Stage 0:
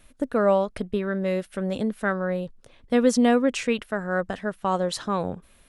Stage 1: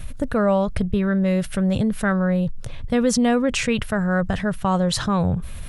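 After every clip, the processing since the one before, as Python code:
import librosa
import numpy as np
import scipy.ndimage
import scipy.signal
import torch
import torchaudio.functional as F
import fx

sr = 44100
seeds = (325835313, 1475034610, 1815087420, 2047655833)

y = fx.low_shelf_res(x, sr, hz=190.0, db=12.5, q=1.5)
y = fx.env_flatten(y, sr, amount_pct=50)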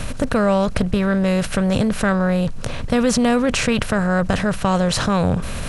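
y = fx.bin_compress(x, sr, power=0.6)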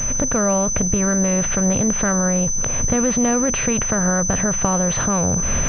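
y = fx.recorder_agc(x, sr, target_db=-10.0, rise_db_per_s=38.0, max_gain_db=30)
y = fx.pwm(y, sr, carrier_hz=6100.0)
y = y * librosa.db_to_amplitude(-2.5)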